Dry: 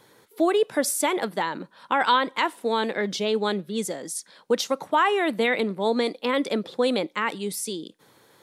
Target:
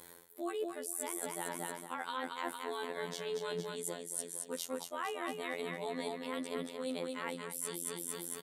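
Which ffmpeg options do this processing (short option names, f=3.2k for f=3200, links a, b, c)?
-af "aecho=1:1:229|458|687|916|1145|1374:0.501|0.261|0.136|0.0705|0.0366|0.0191,afftfilt=real='hypot(re,im)*cos(PI*b)':imag='0':win_size=2048:overlap=0.75,aexciter=amount=4.8:drive=1.8:freq=7.5k,areverse,acompressor=threshold=-38dB:ratio=8,areverse,volume=2.5dB"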